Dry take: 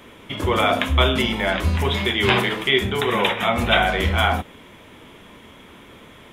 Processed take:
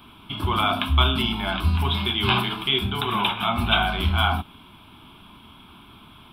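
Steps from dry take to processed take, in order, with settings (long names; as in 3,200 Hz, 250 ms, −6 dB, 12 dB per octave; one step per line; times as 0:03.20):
phaser with its sweep stopped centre 1,900 Hz, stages 6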